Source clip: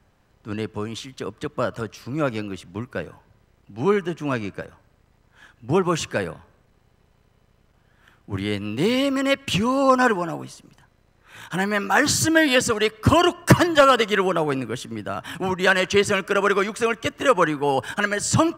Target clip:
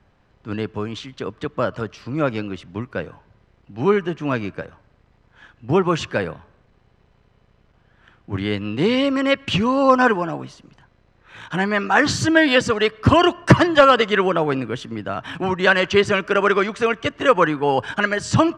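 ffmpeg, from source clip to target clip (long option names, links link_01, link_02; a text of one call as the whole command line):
ffmpeg -i in.wav -af "lowpass=4400,volume=2.5dB" out.wav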